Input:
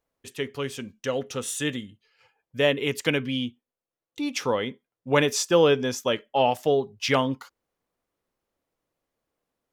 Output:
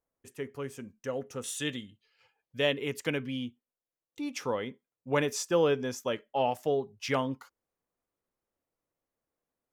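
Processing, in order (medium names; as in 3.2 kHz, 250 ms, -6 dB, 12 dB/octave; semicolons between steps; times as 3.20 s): peaking EQ 3.6 kHz -14 dB 1 oct, from 1.44 s +3.5 dB, from 2.77 s -5 dB; trim -6.5 dB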